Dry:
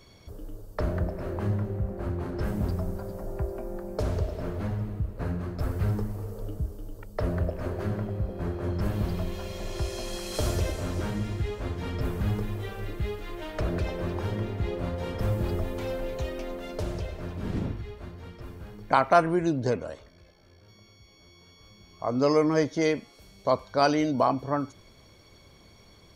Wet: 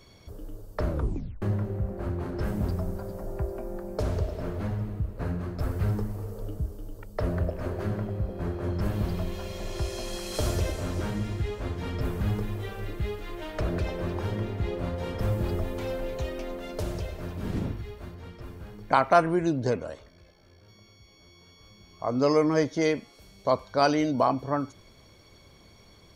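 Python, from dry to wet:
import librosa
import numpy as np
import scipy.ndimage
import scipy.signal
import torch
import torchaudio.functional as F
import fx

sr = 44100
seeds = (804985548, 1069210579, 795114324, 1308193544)

y = fx.high_shelf(x, sr, hz=9900.0, db=10.0, at=(16.77, 18.15))
y = fx.edit(y, sr, fx.tape_stop(start_s=0.88, length_s=0.54), tone=tone)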